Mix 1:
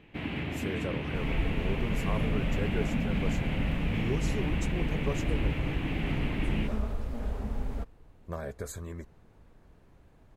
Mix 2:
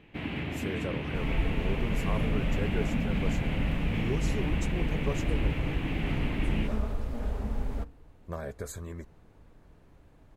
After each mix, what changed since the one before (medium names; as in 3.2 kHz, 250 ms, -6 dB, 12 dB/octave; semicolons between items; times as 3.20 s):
second sound: send on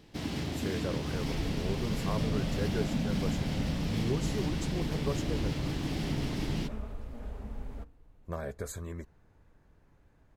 first sound: add resonant high shelf 3.7 kHz +14 dB, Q 3; second sound -8.5 dB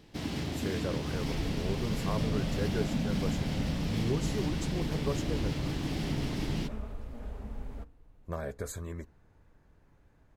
speech: send on